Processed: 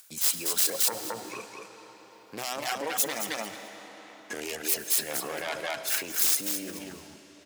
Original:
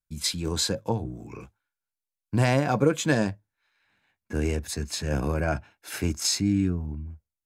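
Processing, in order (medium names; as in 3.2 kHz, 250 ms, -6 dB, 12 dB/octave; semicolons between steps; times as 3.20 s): self-modulated delay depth 0.48 ms; feedback delay 218 ms, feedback 16%, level -5 dB; reverb removal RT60 0.69 s; compression, threshold -26 dBFS, peak gain reduction 9.5 dB; on a send at -13 dB: reverberation RT60 3.5 s, pre-delay 15 ms; on the sum: peak limiter -26.5 dBFS, peak gain reduction 10.5 dB; in parallel at -1.5 dB: upward compressor, threshold -38 dBFS; on the sum: high-pass 460 Hz 12 dB/octave; treble shelf 2.8 kHz +10 dB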